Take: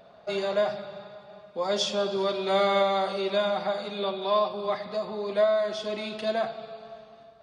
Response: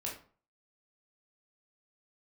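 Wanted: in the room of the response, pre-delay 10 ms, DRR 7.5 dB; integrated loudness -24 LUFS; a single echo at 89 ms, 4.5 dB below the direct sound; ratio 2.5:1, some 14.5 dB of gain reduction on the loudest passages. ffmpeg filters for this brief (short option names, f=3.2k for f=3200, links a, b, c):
-filter_complex "[0:a]acompressor=threshold=-42dB:ratio=2.5,aecho=1:1:89:0.596,asplit=2[a][b];[1:a]atrim=start_sample=2205,adelay=10[c];[b][c]afir=irnorm=-1:irlink=0,volume=-8.5dB[d];[a][d]amix=inputs=2:normalize=0,volume=13.5dB"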